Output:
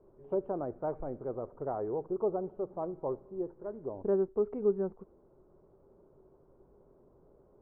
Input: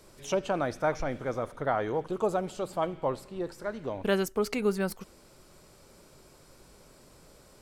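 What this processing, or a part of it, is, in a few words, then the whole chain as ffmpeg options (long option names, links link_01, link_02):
under water: -af "lowpass=frequency=1000:width=0.5412,lowpass=frequency=1000:width=1.3066,equalizer=frequency=390:width_type=o:width=0.41:gain=9,volume=-7.5dB"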